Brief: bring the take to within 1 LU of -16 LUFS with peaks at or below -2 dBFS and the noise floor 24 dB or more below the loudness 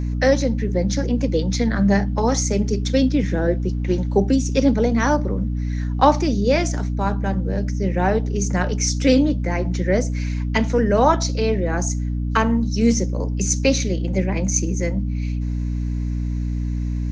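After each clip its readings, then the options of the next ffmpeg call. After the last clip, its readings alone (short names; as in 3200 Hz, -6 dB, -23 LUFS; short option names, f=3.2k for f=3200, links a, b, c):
hum 60 Hz; harmonics up to 300 Hz; hum level -21 dBFS; loudness -20.5 LUFS; peak -2.5 dBFS; loudness target -16.0 LUFS
-> -af "bandreject=f=60:t=h:w=6,bandreject=f=120:t=h:w=6,bandreject=f=180:t=h:w=6,bandreject=f=240:t=h:w=6,bandreject=f=300:t=h:w=6"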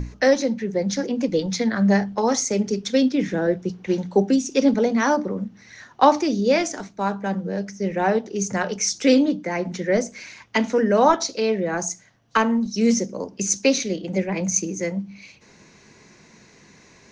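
hum none; loudness -22.0 LUFS; peak -3.0 dBFS; loudness target -16.0 LUFS
-> -af "volume=6dB,alimiter=limit=-2dB:level=0:latency=1"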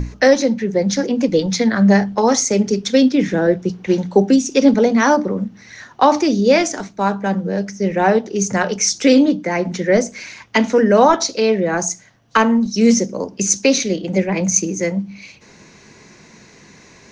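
loudness -16.5 LUFS; peak -2.0 dBFS; noise floor -46 dBFS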